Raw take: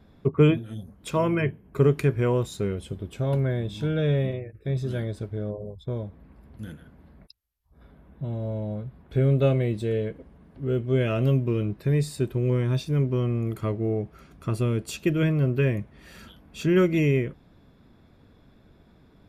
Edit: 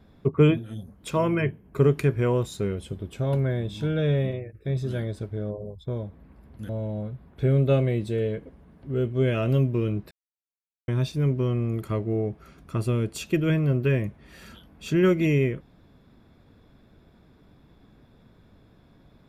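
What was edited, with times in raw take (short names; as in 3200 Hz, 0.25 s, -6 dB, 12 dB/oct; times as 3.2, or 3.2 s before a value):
6.69–8.42 cut
11.84–12.61 mute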